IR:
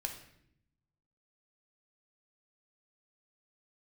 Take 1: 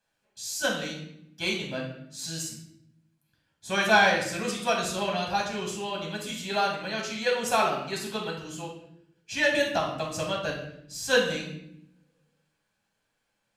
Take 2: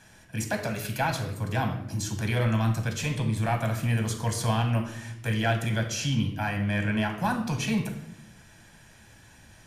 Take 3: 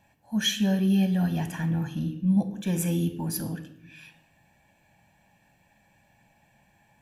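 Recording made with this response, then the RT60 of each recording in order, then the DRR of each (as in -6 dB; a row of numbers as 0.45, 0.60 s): 2; 0.70, 0.70, 0.75 s; -2.0, 3.0, 8.0 dB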